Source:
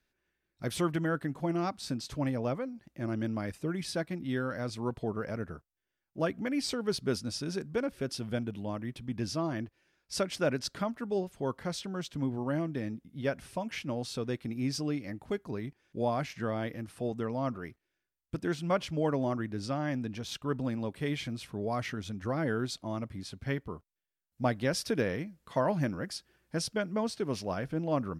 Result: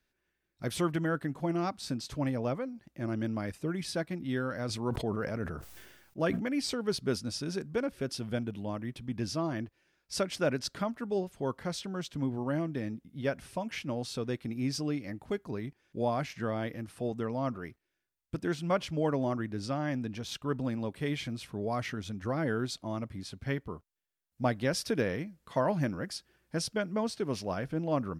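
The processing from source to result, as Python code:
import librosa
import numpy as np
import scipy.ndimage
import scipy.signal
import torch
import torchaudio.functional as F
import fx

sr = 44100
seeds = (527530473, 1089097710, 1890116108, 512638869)

y = fx.sustainer(x, sr, db_per_s=46.0, at=(4.68, 6.39), fade=0.02)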